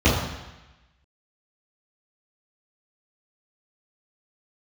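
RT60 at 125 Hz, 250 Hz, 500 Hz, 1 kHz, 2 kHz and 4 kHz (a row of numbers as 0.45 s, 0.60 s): 1.1 s, 1.0 s, 0.95 s, 1.1 s, 1.2 s, 1.1 s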